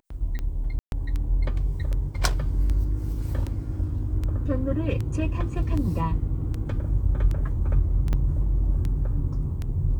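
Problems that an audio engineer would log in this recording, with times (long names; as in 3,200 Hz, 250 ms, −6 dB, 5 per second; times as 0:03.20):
scratch tick 78 rpm −19 dBFS
0:00.79–0:00.92: drop-out 131 ms
0:08.13: drop-out 2.8 ms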